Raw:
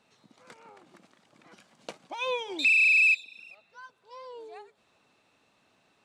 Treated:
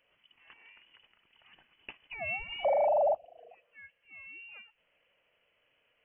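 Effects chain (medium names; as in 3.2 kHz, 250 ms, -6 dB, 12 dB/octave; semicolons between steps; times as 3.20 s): spectral replace 2.46–2.84 s, 740–1900 Hz before; frequency inversion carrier 3.2 kHz; trim -5 dB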